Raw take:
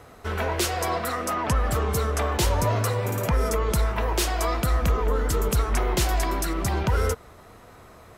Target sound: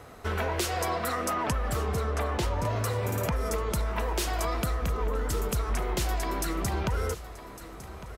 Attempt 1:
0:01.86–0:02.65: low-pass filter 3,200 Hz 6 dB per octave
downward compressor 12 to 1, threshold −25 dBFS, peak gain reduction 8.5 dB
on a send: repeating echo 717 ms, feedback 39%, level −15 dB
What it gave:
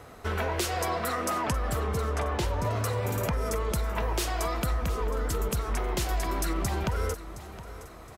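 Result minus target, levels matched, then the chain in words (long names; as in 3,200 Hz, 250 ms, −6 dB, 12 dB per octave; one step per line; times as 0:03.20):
echo 438 ms early
0:01.86–0:02.65: low-pass filter 3,200 Hz 6 dB per octave
downward compressor 12 to 1, threshold −25 dBFS, peak gain reduction 8.5 dB
on a send: repeating echo 1,155 ms, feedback 39%, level −15 dB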